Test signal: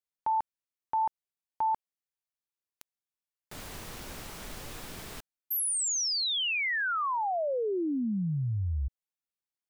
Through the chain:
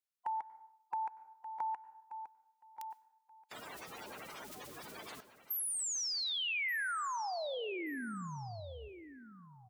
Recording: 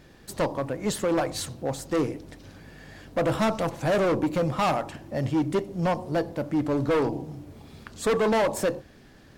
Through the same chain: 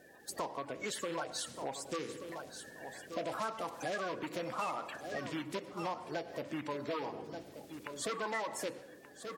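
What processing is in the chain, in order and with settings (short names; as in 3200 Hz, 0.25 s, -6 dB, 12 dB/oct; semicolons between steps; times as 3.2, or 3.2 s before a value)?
bin magnitudes rounded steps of 30 dB; feedback echo 1.18 s, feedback 16%, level -14 dB; plate-style reverb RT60 0.75 s, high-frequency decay 0.65×, pre-delay 85 ms, DRR 18 dB; dynamic EQ 2000 Hz, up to +6 dB, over -44 dBFS, Q 0.92; HPF 600 Hz 6 dB/oct; compressor 3:1, threshold -36 dBFS; gain -1.5 dB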